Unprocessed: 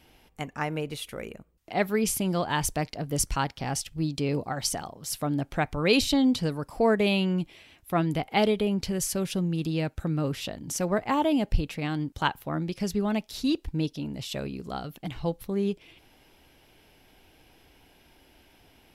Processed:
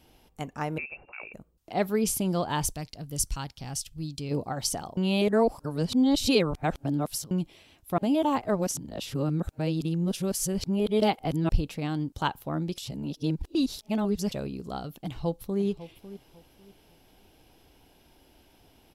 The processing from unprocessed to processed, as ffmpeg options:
ffmpeg -i in.wav -filter_complex "[0:a]asettb=1/sr,asplit=3[link_01][link_02][link_03];[link_01]atrim=end=0.784[link_04];[link_02]atrim=start=0.78:end=1.34,asetpts=PTS-STARTPTS,afade=type=in:duration=0.004:curve=qsin,afade=type=out:start_time=0.556:duration=0.004:curve=qsin,lowpass=frequency=2400:width_type=q:width=0.5098,lowpass=frequency=2400:width_type=q:width=0.6013,lowpass=frequency=2400:width_type=q:width=0.9,lowpass=frequency=2400:width_type=q:width=2.563,afreqshift=-2800[link_05];[link_03]atrim=start=1.336[link_06];[link_04][link_05]acrossfade=duration=0.004:curve1=hsin:curve2=qsin[link_07];[link_07][link_06]acrossfade=duration=0.004:curve1=qsin:curve2=hsin,asplit=3[link_08][link_09][link_10];[link_08]afade=type=out:start_time=2.71:duration=0.02[link_11];[link_09]equalizer=frequency=560:width=0.33:gain=-11,afade=type=in:start_time=2.71:duration=0.02,afade=type=out:start_time=4.3:duration=0.02[link_12];[link_10]afade=type=in:start_time=4.3:duration=0.02[link_13];[link_11][link_12][link_13]amix=inputs=3:normalize=0,asplit=2[link_14][link_15];[link_15]afade=type=in:start_time=15.04:duration=0.01,afade=type=out:start_time=15.61:duration=0.01,aecho=0:1:550|1100|1650:0.188365|0.0470912|0.0117728[link_16];[link_14][link_16]amix=inputs=2:normalize=0,asplit=7[link_17][link_18][link_19][link_20][link_21][link_22][link_23];[link_17]atrim=end=4.972[link_24];[link_18]atrim=start=4.968:end=7.312,asetpts=PTS-STARTPTS,areverse[link_25];[link_19]atrim=start=7.308:end=7.982[link_26];[link_20]atrim=start=7.978:end=11.492,asetpts=PTS-STARTPTS,areverse[link_27];[link_21]atrim=start=11.488:end=12.782[link_28];[link_22]atrim=start=12.778:end=14.322,asetpts=PTS-STARTPTS,areverse[link_29];[link_23]atrim=start=14.318[link_30];[link_24][link_25]acrossfade=duration=0.004:curve1=hsin:curve2=hsin[link_31];[link_31][link_26]acrossfade=duration=0.004:curve1=hsin:curve2=hsin[link_32];[link_32][link_27]acrossfade=duration=0.004:curve1=hsin:curve2=hsin[link_33];[link_33][link_28]acrossfade=duration=0.004:curve1=hsin:curve2=hsin[link_34];[link_34][link_29]acrossfade=duration=0.004:curve1=hsin:curve2=hsin[link_35];[link_35][link_30]acrossfade=duration=0.004:curve1=hsin:curve2=hsin,equalizer=frequency=2000:width_type=o:width=1.1:gain=-7" out.wav

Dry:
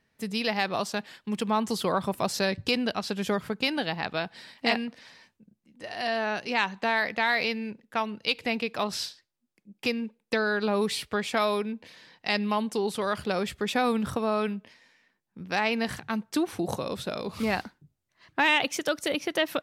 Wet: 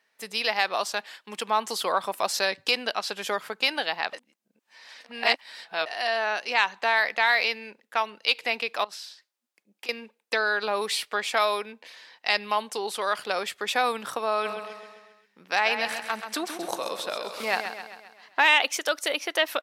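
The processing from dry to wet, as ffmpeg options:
ffmpeg -i in.wav -filter_complex "[0:a]asettb=1/sr,asplit=3[link_01][link_02][link_03];[link_01]atrim=end=8.844[link_04];[link_02]atrim=start=8.84:end=9.89,asetpts=PTS-STARTPTS,afade=type=in:duration=0.004:curve=qsin,afade=type=out:start_time=1.046:duration=0.004:curve=qsin,acompressor=threshold=-41dB:ratio=6:attack=3.2:release=140:knee=1:detection=peak[link_05];[link_03]atrim=start=9.886[link_06];[link_04][link_05]acrossfade=duration=0.004:curve1=hsin:curve2=qsin[link_07];[link_07][link_06]acrossfade=duration=0.004:curve1=qsin:curve2=hsin,asplit=3[link_08][link_09][link_10];[link_08]afade=type=out:start_time=14.44:duration=0.02[link_11];[link_09]aecho=1:1:132|264|396|528|660|792:0.376|0.203|0.11|0.0592|0.032|0.0173,afade=type=in:start_time=14.44:duration=0.02,afade=type=out:start_time=18.46:duration=0.02[link_12];[link_10]afade=type=in:start_time=18.46:duration=0.02[link_13];[link_11][link_12][link_13]amix=inputs=3:normalize=0,asplit=3[link_14][link_15][link_16];[link_14]atrim=end=4.132[link_17];[link_15]atrim=start=4.128:end=5.862,asetpts=PTS-STARTPTS,areverse[link_18];[link_16]atrim=start=5.858[link_19];[link_17][link_18]acrossfade=duration=0.004:curve1=hsin:curve2=hsin[link_20];[link_20][link_19]acrossfade=duration=0.004:curve1=hsin:curve2=hsin,highpass=620,volume=4dB" out.wav

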